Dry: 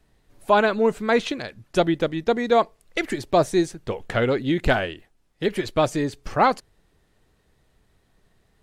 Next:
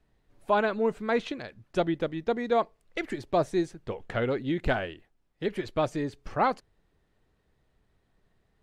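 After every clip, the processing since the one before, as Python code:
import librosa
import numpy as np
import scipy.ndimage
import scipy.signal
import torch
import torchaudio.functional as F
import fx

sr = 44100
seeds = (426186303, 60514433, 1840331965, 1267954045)

y = fx.high_shelf(x, sr, hz=5100.0, db=-10.0)
y = F.gain(torch.from_numpy(y), -6.5).numpy()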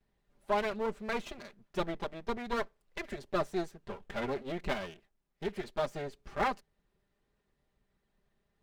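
y = fx.lower_of_two(x, sr, delay_ms=5.0)
y = F.gain(torch.from_numpy(y), -5.5).numpy()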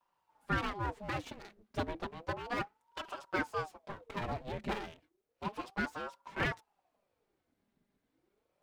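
y = fx.ring_lfo(x, sr, carrier_hz=590.0, swing_pct=65, hz=0.32)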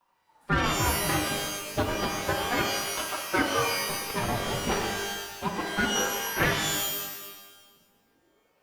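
y = fx.rev_shimmer(x, sr, seeds[0], rt60_s=1.2, semitones=12, shimmer_db=-2, drr_db=3.0)
y = F.gain(torch.from_numpy(y), 7.0).numpy()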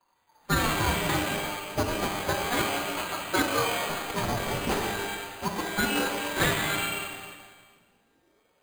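y = np.repeat(x[::8], 8)[:len(x)]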